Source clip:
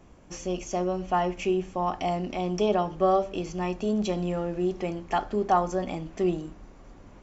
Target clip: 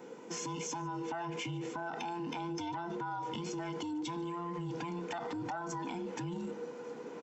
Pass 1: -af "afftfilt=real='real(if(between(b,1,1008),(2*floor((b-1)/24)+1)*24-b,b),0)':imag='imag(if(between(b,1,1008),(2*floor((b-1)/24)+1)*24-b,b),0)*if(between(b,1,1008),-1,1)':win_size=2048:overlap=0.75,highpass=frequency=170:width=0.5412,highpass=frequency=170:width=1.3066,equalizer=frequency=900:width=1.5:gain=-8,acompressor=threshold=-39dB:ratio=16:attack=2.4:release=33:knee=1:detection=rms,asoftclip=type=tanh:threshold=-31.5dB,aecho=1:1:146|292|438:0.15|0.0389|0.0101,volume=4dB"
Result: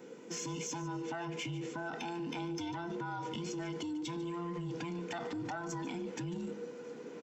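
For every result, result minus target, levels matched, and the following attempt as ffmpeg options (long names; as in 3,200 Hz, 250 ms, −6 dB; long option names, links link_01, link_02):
soft clipping: distortion +13 dB; echo-to-direct +8 dB; 1,000 Hz band −3.5 dB
-af "afftfilt=real='real(if(between(b,1,1008),(2*floor((b-1)/24)+1)*24-b,b),0)':imag='imag(if(between(b,1,1008),(2*floor((b-1)/24)+1)*24-b,b),0)*if(between(b,1,1008),-1,1)':win_size=2048:overlap=0.75,highpass=frequency=170:width=0.5412,highpass=frequency=170:width=1.3066,equalizer=frequency=900:width=1.5:gain=-8,acompressor=threshold=-39dB:ratio=16:attack=2.4:release=33:knee=1:detection=rms,asoftclip=type=tanh:threshold=-24.5dB,aecho=1:1:146|292:0.0596|0.0155,volume=4dB"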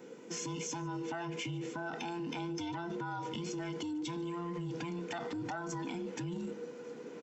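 1,000 Hz band −3.5 dB
-af "afftfilt=real='real(if(between(b,1,1008),(2*floor((b-1)/24)+1)*24-b,b),0)':imag='imag(if(between(b,1,1008),(2*floor((b-1)/24)+1)*24-b,b),0)*if(between(b,1,1008),-1,1)':win_size=2048:overlap=0.75,highpass=frequency=170:width=0.5412,highpass=frequency=170:width=1.3066,acompressor=threshold=-39dB:ratio=16:attack=2.4:release=33:knee=1:detection=rms,asoftclip=type=tanh:threshold=-24.5dB,aecho=1:1:146|292:0.0596|0.0155,volume=4dB"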